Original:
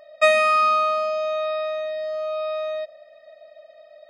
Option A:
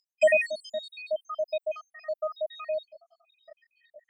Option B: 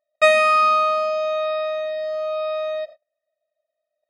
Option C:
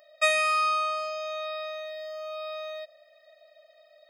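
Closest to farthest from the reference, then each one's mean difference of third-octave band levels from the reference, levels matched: B, C, A; 1.5, 2.5, 7.0 dB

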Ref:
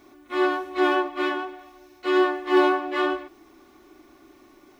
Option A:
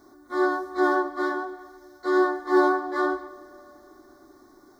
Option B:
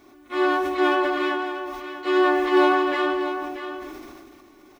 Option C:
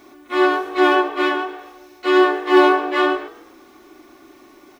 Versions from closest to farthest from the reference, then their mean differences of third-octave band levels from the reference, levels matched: C, A, B; 1.0, 2.5, 4.5 dB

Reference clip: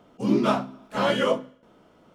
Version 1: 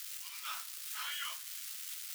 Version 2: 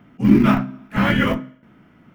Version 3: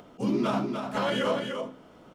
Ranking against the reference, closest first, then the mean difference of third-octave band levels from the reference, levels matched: 2, 3, 1; 5.0, 7.0, 25.5 dB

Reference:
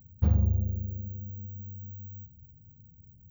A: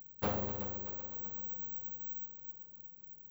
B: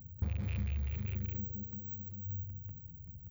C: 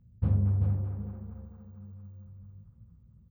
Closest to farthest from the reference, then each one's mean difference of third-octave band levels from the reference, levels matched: C, B, A; 2.5, 8.0, 13.0 dB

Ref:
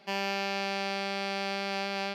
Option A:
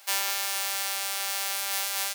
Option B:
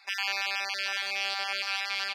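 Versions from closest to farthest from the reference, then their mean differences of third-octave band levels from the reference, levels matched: B, A; 6.5, 11.0 dB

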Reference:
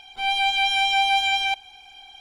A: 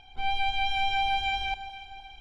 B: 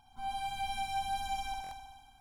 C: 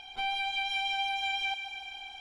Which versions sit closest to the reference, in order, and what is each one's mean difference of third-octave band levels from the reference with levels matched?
C, A, B; 4.0, 5.5, 8.5 dB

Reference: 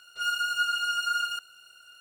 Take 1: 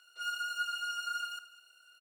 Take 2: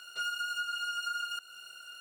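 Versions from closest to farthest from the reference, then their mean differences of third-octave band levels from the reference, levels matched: 1, 2; 1.5, 3.5 dB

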